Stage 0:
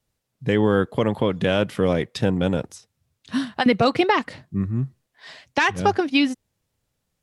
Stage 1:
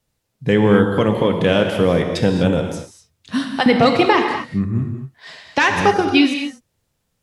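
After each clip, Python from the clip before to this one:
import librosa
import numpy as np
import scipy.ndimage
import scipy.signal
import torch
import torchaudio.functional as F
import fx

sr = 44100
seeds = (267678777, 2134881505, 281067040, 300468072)

y = fx.rev_gated(x, sr, seeds[0], gate_ms=270, shape='flat', drr_db=3.5)
y = F.gain(torch.from_numpy(y), 3.5).numpy()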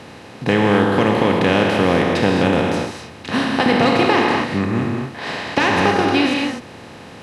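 y = fx.bin_compress(x, sr, power=0.4)
y = F.gain(torch.from_numpy(y), -6.5).numpy()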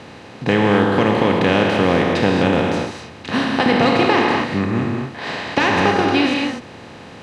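y = scipy.signal.sosfilt(scipy.signal.butter(2, 7900.0, 'lowpass', fs=sr, output='sos'), x)
y = fx.notch(y, sr, hz=5300.0, q=26.0)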